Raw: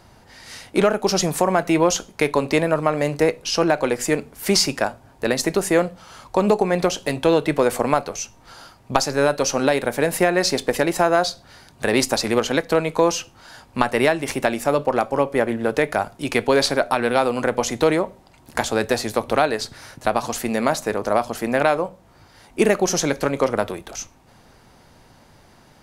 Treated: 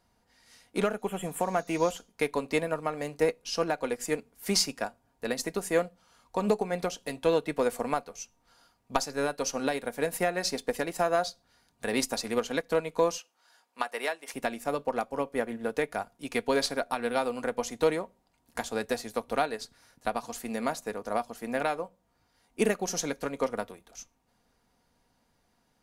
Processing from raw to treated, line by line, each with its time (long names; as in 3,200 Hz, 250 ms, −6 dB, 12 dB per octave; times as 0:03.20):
0:01.01–0:01.95: healed spectral selection 3,500–7,000 Hz
0:13.18–0:14.34: high-pass filter 520 Hz
whole clip: high-shelf EQ 7,000 Hz +5.5 dB; comb filter 4.2 ms, depth 37%; expander for the loud parts 1.5 to 1, over −36 dBFS; level −8.5 dB